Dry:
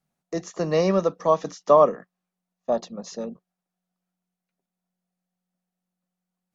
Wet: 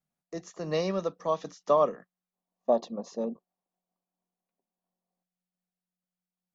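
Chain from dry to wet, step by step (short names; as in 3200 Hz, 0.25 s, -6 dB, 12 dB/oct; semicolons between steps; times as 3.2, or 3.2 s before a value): spectral gain 2.34–5.23, 210–1200 Hz +10 dB; dynamic EQ 3600 Hz, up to +7 dB, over -42 dBFS, Q 1.4; noise-modulated level, depth 55%; gain -6 dB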